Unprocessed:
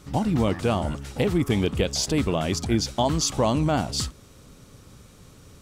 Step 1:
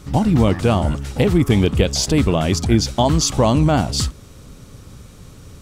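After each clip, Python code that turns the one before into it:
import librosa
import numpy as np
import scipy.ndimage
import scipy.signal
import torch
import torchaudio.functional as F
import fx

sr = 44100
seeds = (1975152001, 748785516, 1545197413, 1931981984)

y = fx.low_shelf(x, sr, hz=150.0, db=6.0)
y = F.gain(torch.from_numpy(y), 5.5).numpy()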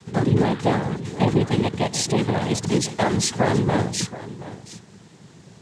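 y = fx.noise_vocoder(x, sr, seeds[0], bands=6)
y = y + 10.0 ** (-15.5 / 20.0) * np.pad(y, (int(725 * sr / 1000.0), 0))[:len(y)]
y = F.gain(torch.from_numpy(y), -4.0).numpy()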